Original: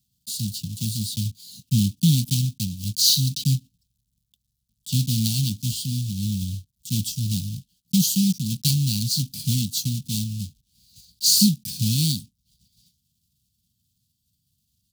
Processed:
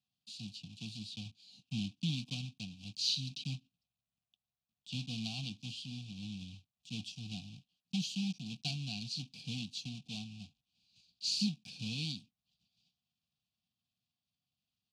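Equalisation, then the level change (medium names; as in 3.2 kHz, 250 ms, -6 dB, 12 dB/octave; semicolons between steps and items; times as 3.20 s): vowel filter a; low-pass 6 kHz 12 dB/octave; +9.5 dB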